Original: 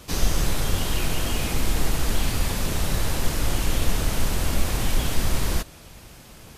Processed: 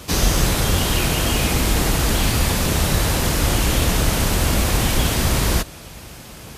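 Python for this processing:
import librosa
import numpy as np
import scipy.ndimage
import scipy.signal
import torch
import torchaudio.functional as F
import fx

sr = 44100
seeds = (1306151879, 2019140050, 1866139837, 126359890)

y = scipy.signal.sosfilt(scipy.signal.butter(2, 41.0, 'highpass', fs=sr, output='sos'), x)
y = y * 10.0 ** (8.0 / 20.0)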